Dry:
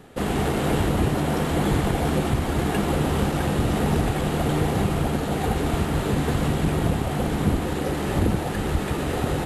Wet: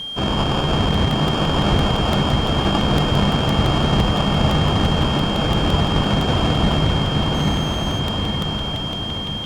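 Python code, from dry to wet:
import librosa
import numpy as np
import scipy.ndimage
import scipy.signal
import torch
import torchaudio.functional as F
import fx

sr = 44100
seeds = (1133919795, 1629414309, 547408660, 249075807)

p1 = fx.fade_out_tail(x, sr, length_s=2.7)
p2 = fx.curve_eq(p1, sr, hz=(200.0, 480.0, 3800.0), db=(0, -15, 13))
p3 = fx.sample_hold(p2, sr, seeds[0], rate_hz=2000.0, jitter_pct=0)
p4 = p3 + fx.echo_diffused(p3, sr, ms=973, feedback_pct=55, wet_db=-5.5, dry=0)
p5 = fx.quant_dither(p4, sr, seeds[1], bits=8, dither='triangular')
p6 = fx.air_absorb(p5, sr, metres=97.0)
p7 = p6 + 10.0 ** (-30.0 / 20.0) * np.sin(2.0 * np.pi * 3200.0 * np.arange(len(p6)) / sr)
p8 = np.sign(p7) * np.maximum(np.abs(p7) - 10.0 ** (-39.0 / 20.0), 0.0)
p9 = p7 + (p8 * 10.0 ** (-11.0 / 20.0))
p10 = fx.buffer_crackle(p9, sr, first_s=0.94, period_s=0.17, block=64, kind='repeat')
p11 = fx.running_max(p10, sr, window=3, at=(7.34, 8.0))
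y = p11 * 10.0 ** (2.0 / 20.0)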